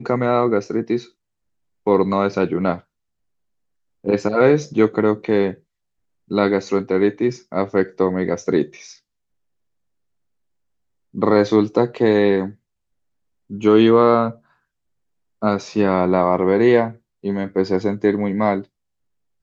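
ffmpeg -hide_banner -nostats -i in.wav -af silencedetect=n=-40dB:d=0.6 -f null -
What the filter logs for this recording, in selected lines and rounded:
silence_start: 1.08
silence_end: 1.87 | silence_duration: 0.79
silence_start: 2.80
silence_end: 4.04 | silence_duration: 1.25
silence_start: 5.55
silence_end: 6.31 | silence_duration: 0.76
silence_start: 8.96
silence_end: 11.14 | silence_duration: 2.18
silence_start: 12.53
silence_end: 13.50 | silence_duration: 0.97
silence_start: 14.35
silence_end: 15.42 | silence_duration: 1.07
silence_start: 18.64
silence_end: 19.43 | silence_duration: 0.78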